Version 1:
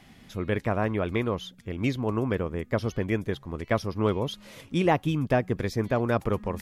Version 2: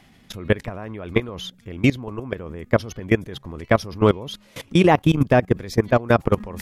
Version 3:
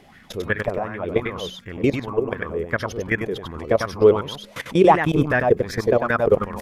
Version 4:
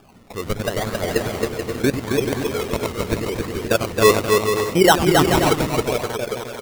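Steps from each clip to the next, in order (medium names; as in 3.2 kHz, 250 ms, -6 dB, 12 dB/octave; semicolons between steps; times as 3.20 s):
in parallel at +0.5 dB: peak limiter -18.5 dBFS, peak gain reduction 8.5 dB; on the sum: level held to a coarse grid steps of 20 dB; trim +7 dB
peak limiter -11 dBFS, peak gain reduction 9 dB; delay 97 ms -4.5 dB; sweeping bell 2.7 Hz 410–1800 Hz +16 dB; trim -1 dB
fade out at the end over 1.53 s; decimation with a swept rate 22×, swing 60% 0.8 Hz; bouncing-ball echo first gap 270 ms, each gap 0.6×, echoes 5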